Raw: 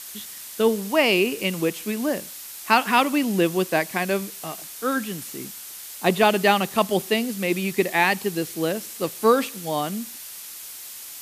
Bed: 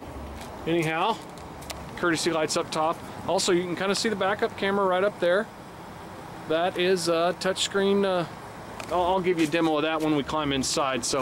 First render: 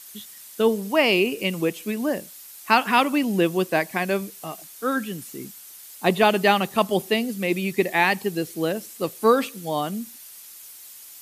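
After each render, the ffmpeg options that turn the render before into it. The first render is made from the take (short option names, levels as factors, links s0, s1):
-af "afftdn=nr=8:nf=-39"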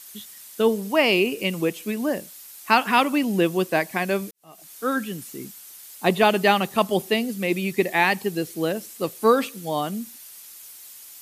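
-filter_complex "[0:a]asplit=2[s0][s1];[s0]atrim=end=4.31,asetpts=PTS-STARTPTS,afade=t=out:st=4.306:d=0.004:c=hsin[s2];[s1]atrim=start=4.31,asetpts=PTS-STARTPTS,afade=t=in:d=0.41:c=qua[s3];[s2][s3]concat=n=2:v=0:a=1"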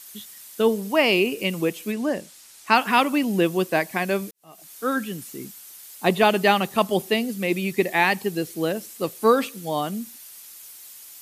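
-filter_complex "[0:a]asettb=1/sr,asplit=3[s0][s1][s2];[s0]atrim=end=1.924[s3];[s1]atrim=start=1.92:end=2.75,asetpts=PTS-STARTPTS,afade=t=in:d=0.004:c=qsin,afade=t=out:st=0.826:d=0.004:c=qsin,lowpass=9100[s4];[s2]atrim=start=2.746[s5];[s3][s4]acrossfade=d=0.004:c1=hsin:c2=qsin[s6];[s6][s5]acrossfade=d=0.004:c1=qsin:c2=hsin"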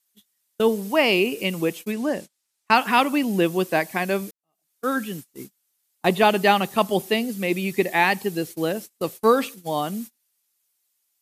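-af "agate=range=0.0355:threshold=0.02:ratio=16:detection=peak,equalizer=f=820:t=o:w=0.23:g=2"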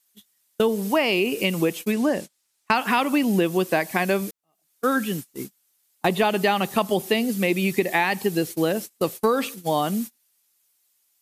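-filter_complex "[0:a]asplit=2[s0][s1];[s1]alimiter=limit=0.282:level=0:latency=1:release=31,volume=0.75[s2];[s0][s2]amix=inputs=2:normalize=0,acompressor=threshold=0.141:ratio=6"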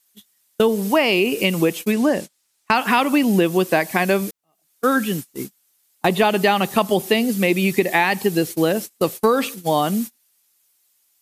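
-af "volume=1.58,alimiter=limit=0.708:level=0:latency=1"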